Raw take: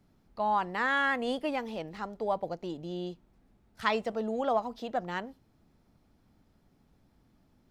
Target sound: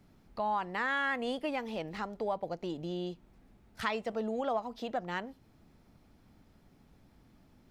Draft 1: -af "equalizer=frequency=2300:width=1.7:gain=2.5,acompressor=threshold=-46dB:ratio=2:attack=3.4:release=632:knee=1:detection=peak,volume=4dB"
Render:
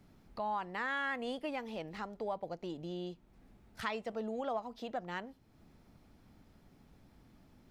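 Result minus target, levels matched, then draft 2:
downward compressor: peak gain reduction +4 dB
-af "equalizer=frequency=2300:width=1.7:gain=2.5,acompressor=threshold=-37.5dB:ratio=2:attack=3.4:release=632:knee=1:detection=peak,volume=4dB"

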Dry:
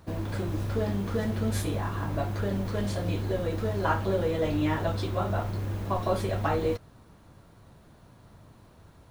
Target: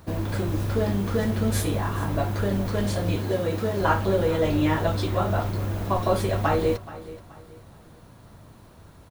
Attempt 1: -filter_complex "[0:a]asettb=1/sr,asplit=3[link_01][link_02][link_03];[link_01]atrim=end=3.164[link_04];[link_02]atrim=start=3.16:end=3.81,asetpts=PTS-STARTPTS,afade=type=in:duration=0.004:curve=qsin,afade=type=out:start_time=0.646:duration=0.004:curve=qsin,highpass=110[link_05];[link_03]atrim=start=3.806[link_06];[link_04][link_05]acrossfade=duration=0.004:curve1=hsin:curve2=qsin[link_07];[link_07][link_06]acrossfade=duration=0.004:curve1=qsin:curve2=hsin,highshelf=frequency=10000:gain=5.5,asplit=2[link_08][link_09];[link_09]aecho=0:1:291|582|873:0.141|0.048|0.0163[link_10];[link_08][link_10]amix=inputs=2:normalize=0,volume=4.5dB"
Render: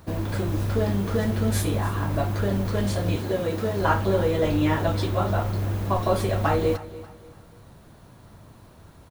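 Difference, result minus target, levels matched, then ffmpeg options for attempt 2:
echo 136 ms early
-filter_complex "[0:a]asettb=1/sr,asplit=3[link_01][link_02][link_03];[link_01]atrim=end=3.164[link_04];[link_02]atrim=start=3.16:end=3.81,asetpts=PTS-STARTPTS,afade=type=in:duration=0.004:curve=qsin,afade=type=out:start_time=0.646:duration=0.004:curve=qsin,highpass=110[link_05];[link_03]atrim=start=3.806[link_06];[link_04][link_05]acrossfade=duration=0.004:curve1=hsin:curve2=qsin[link_07];[link_07][link_06]acrossfade=duration=0.004:curve1=qsin:curve2=hsin,highshelf=frequency=10000:gain=5.5,asplit=2[link_08][link_09];[link_09]aecho=0:1:427|854|1281:0.141|0.048|0.0163[link_10];[link_08][link_10]amix=inputs=2:normalize=0,volume=4.5dB"

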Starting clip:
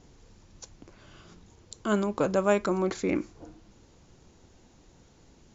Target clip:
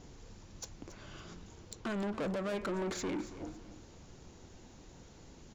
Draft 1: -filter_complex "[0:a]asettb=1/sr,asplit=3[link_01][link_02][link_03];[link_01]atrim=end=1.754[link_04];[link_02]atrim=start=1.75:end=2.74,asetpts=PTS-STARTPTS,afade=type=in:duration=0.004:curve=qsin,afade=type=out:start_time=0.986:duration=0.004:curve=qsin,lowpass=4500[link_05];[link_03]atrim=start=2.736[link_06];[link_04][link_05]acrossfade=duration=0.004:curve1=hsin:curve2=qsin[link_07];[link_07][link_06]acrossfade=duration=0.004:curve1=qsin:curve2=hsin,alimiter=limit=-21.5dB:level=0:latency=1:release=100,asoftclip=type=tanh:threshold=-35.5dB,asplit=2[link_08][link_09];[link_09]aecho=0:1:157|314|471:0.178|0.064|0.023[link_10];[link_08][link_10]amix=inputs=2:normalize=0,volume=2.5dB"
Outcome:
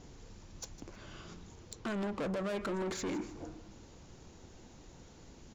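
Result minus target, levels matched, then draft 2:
echo 120 ms early
-filter_complex "[0:a]asettb=1/sr,asplit=3[link_01][link_02][link_03];[link_01]atrim=end=1.754[link_04];[link_02]atrim=start=1.75:end=2.74,asetpts=PTS-STARTPTS,afade=type=in:duration=0.004:curve=qsin,afade=type=out:start_time=0.986:duration=0.004:curve=qsin,lowpass=4500[link_05];[link_03]atrim=start=2.736[link_06];[link_04][link_05]acrossfade=duration=0.004:curve1=hsin:curve2=qsin[link_07];[link_07][link_06]acrossfade=duration=0.004:curve1=qsin:curve2=hsin,alimiter=limit=-21.5dB:level=0:latency=1:release=100,asoftclip=type=tanh:threshold=-35.5dB,asplit=2[link_08][link_09];[link_09]aecho=0:1:277|554|831:0.178|0.064|0.023[link_10];[link_08][link_10]amix=inputs=2:normalize=0,volume=2.5dB"

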